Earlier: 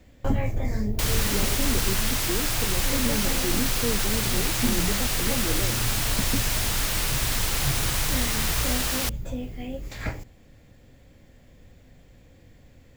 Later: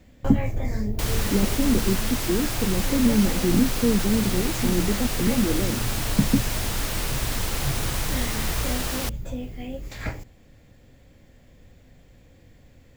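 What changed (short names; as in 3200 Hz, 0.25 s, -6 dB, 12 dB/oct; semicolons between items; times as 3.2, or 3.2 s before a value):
speech: add bell 160 Hz +12.5 dB 2.2 oct; second sound: add tilt shelf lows +4 dB, about 860 Hz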